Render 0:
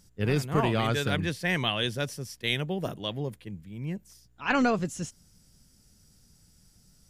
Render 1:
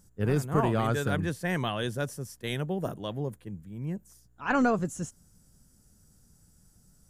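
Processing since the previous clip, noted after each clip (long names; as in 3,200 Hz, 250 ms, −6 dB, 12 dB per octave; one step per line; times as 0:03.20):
flat-topped bell 3,300 Hz −9 dB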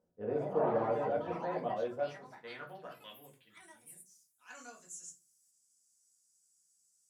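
rectangular room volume 160 cubic metres, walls furnished, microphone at 1.9 metres
band-pass filter sweep 560 Hz → 7,300 Hz, 0:01.79–0:04.24
delay with pitch and tempo change per echo 197 ms, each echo +5 semitones, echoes 2, each echo −6 dB
level −4.5 dB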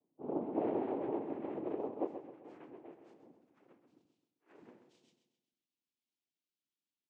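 cochlear-implant simulation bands 4
resonant band-pass 320 Hz, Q 2
on a send: repeating echo 131 ms, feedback 45%, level −9.5 dB
on the sum: level +2.5 dB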